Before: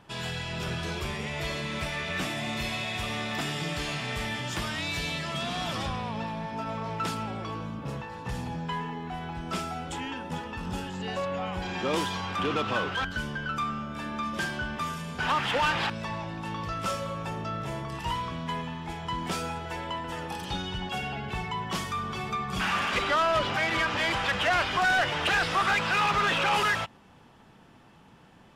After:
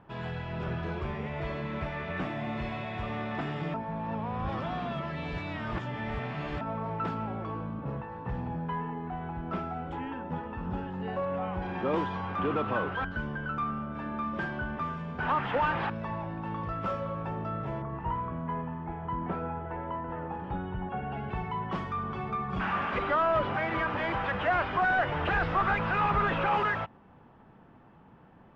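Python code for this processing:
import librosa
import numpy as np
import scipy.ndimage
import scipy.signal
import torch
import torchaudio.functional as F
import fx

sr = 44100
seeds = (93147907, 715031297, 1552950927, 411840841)

y = fx.high_shelf(x, sr, hz=6200.0, db=-10.0, at=(7.85, 11.28))
y = fx.lowpass(y, sr, hz=1800.0, slope=12, at=(17.82, 21.12))
y = fx.low_shelf(y, sr, hz=89.0, db=12.0, at=(25.09, 26.46))
y = fx.edit(y, sr, fx.reverse_span(start_s=3.74, length_s=2.87), tone=tone)
y = scipy.signal.sosfilt(scipy.signal.butter(2, 1500.0, 'lowpass', fs=sr, output='sos'), y)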